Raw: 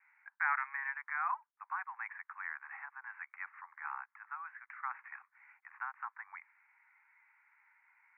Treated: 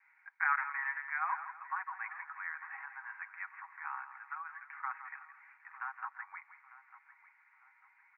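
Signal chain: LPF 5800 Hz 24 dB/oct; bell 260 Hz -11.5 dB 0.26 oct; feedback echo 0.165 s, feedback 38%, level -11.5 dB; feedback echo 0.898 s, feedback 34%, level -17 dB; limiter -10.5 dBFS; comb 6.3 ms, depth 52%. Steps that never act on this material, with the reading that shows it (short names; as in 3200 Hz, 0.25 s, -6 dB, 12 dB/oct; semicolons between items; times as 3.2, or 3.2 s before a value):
LPF 5800 Hz: input band ends at 2700 Hz; bell 260 Hz: input band starts at 680 Hz; limiter -10.5 dBFS: input peak -20.0 dBFS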